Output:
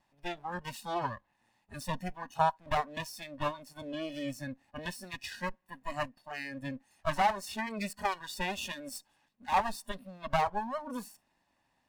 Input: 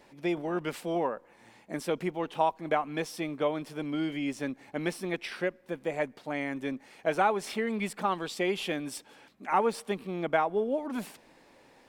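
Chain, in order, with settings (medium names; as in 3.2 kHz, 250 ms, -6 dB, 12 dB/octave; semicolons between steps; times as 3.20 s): comb filter that takes the minimum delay 1.1 ms; 0.70–1.84 s: dynamic bell 3.6 kHz, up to +4 dB, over -57 dBFS, Q 1.2; spectral noise reduction 15 dB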